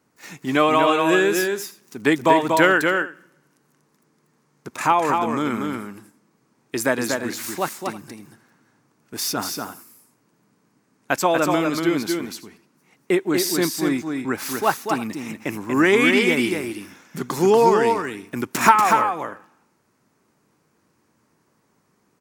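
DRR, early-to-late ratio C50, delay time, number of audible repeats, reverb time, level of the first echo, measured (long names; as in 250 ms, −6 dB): no reverb audible, no reverb audible, 239 ms, 2, no reverb audible, −4.5 dB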